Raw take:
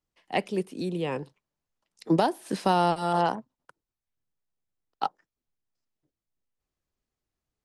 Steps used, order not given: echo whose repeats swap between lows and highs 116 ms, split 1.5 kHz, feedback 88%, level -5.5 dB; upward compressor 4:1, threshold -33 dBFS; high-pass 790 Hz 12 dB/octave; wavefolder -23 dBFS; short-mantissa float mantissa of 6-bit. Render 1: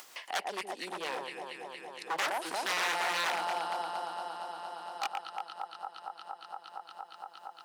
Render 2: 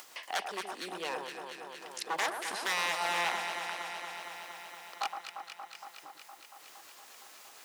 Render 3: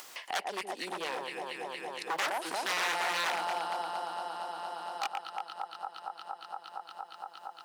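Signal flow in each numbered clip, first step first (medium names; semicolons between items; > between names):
echo whose repeats swap between lows and highs > wavefolder > upward compressor > high-pass > short-mantissa float; wavefolder > upward compressor > echo whose repeats swap between lows and highs > short-mantissa float > high-pass; short-mantissa float > echo whose repeats swap between lows and highs > wavefolder > high-pass > upward compressor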